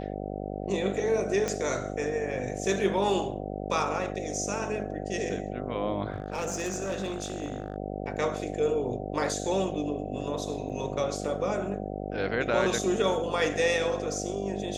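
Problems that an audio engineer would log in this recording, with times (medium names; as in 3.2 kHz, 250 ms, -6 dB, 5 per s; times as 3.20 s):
buzz 50 Hz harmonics 15 -35 dBFS
1.48 s: pop -16 dBFS
6.12–7.76 s: clipped -27 dBFS
10.69–10.70 s: dropout 7.2 ms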